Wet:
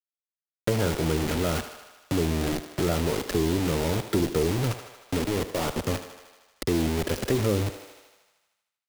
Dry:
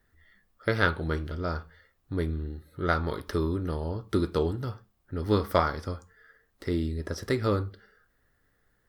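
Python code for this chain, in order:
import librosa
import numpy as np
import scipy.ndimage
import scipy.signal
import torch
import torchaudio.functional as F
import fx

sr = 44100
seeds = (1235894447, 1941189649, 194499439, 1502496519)

y = fx.env_lowpass_down(x, sr, base_hz=800.0, full_db=-23.5)
y = fx.level_steps(y, sr, step_db=17, at=(5.17, 5.75), fade=0.02)
y = fx.quant_dither(y, sr, seeds[0], bits=6, dither='none')
y = fx.peak_eq(y, sr, hz=69.0, db=-8.5, octaves=0.97)
y = fx.echo_thinned(y, sr, ms=77, feedback_pct=38, hz=380.0, wet_db=-21.5)
y = fx.power_curve(y, sr, exponent=0.5)
y = fx.peak_eq(y, sr, hz=1300.0, db=-6.0, octaves=1.2)
y = fx.band_squash(y, sr, depth_pct=40)
y = y * librosa.db_to_amplitude(-2.0)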